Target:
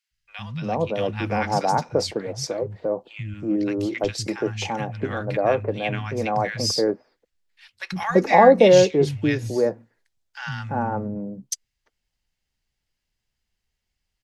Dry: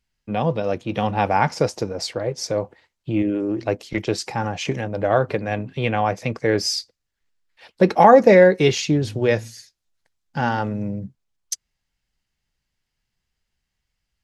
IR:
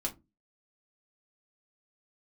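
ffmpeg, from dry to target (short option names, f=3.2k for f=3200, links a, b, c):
-filter_complex "[0:a]acrossover=split=160|1300[a][b][c];[a]adelay=110[d];[b]adelay=340[e];[d][e][c]amix=inputs=3:normalize=0,volume=-1dB"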